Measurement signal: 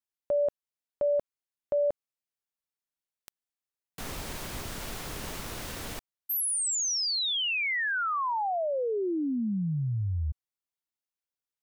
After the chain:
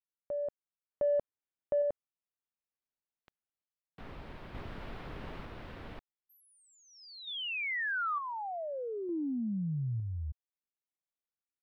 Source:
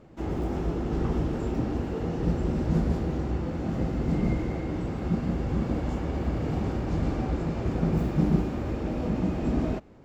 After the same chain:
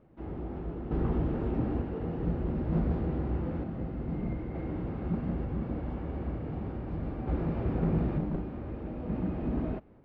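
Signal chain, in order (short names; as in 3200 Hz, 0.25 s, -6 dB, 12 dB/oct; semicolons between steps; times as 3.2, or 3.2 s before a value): one-sided fold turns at -18.5 dBFS; random-step tremolo 1.1 Hz; in parallel at -10.5 dB: soft clip -26.5 dBFS; on the sum: air absorption 400 m; gain -3 dB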